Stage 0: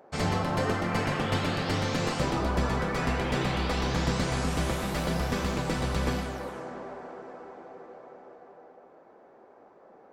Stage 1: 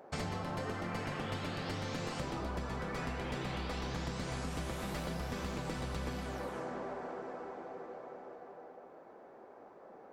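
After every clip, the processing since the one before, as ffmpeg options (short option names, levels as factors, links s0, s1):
-af "acompressor=threshold=0.0158:ratio=6"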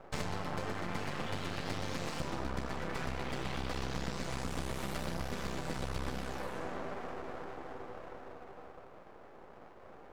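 -af "aeval=exprs='max(val(0),0)':c=same,volume=1.68"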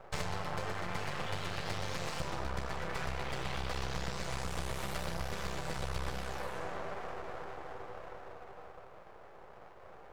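-af "equalizer=f=260:t=o:w=0.72:g=-11.5,volume=1.19"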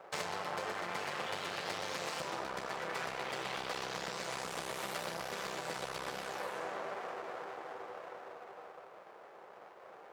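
-af "highpass=280,volume=1.12"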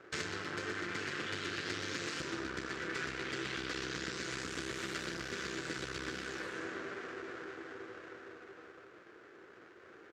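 -af "firequalizer=gain_entry='entry(100,0);entry(170,-9);entry(310,1);entry(560,-19);entry(820,-24);entry(1500,-5);entry(2200,-9);entry(7000,-8);entry(10000,-20);entry(15000,-26)':delay=0.05:min_phase=1,volume=2.99"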